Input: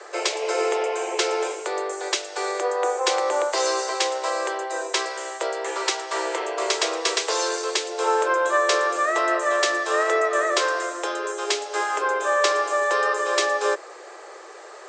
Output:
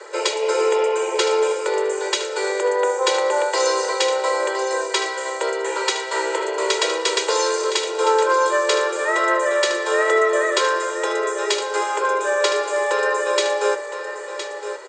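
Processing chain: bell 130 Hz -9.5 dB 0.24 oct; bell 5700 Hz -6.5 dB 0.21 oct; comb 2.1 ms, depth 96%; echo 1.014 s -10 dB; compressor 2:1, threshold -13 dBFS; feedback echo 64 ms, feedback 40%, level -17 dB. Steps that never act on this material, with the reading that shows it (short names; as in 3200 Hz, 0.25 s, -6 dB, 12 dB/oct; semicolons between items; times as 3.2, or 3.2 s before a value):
bell 130 Hz: input band starts at 290 Hz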